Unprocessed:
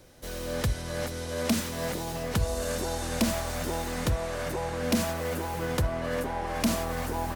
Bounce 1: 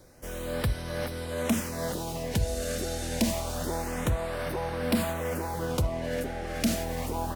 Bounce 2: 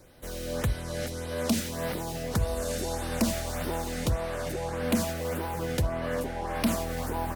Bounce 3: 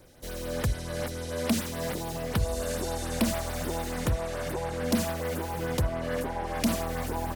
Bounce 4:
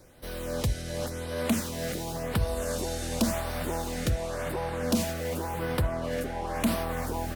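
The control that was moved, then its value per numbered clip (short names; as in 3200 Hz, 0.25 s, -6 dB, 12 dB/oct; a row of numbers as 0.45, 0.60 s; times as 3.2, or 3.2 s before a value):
LFO notch, rate: 0.27, 1.7, 6.9, 0.92 Hz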